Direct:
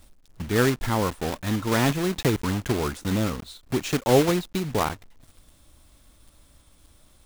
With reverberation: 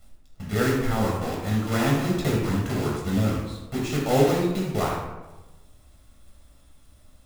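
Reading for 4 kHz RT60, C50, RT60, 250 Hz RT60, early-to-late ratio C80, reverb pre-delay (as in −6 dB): 0.60 s, 1.5 dB, 1.1 s, 1.1 s, 5.5 dB, 15 ms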